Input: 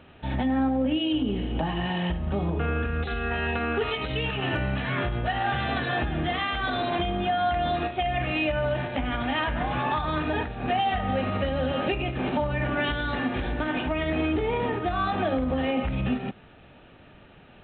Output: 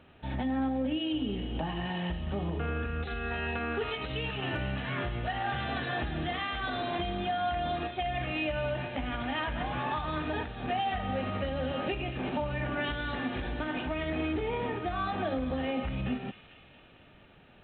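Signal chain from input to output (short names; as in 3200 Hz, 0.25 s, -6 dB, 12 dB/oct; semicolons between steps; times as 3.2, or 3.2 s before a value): thin delay 0.227 s, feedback 68%, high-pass 2500 Hz, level -8 dB; gain -6 dB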